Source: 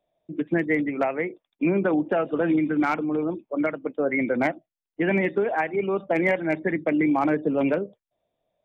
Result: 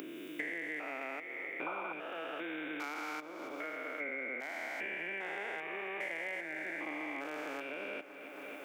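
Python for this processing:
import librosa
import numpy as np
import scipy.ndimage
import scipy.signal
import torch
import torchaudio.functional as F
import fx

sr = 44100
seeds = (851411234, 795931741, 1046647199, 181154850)

p1 = fx.spec_steps(x, sr, hold_ms=400)
p2 = fx.highpass(p1, sr, hz=320.0, slope=6)
p3 = np.diff(p2, prepend=0.0)
p4 = fx.spec_paint(p3, sr, seeds[0], shape='noise', start_s=1.66, length_s=0.27, low_hz=470.0, high_hz=1500.0, level_db=-47.0)
p5 = p4 + fx.echo_feedback(p4, sr, ms=276, feedback_pct=60, wet_db=-17.0, dry=0)
p6 = fx.band_squash(p5, sr, depth_pct=100)
y = p6 * 10.0 ** (9.5 / 20.0)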